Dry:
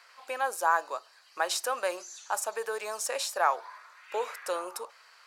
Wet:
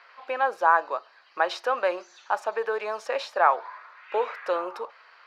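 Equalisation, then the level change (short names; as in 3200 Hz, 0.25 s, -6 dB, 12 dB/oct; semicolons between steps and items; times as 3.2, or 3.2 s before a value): air absorption 300 m; +7.0 dB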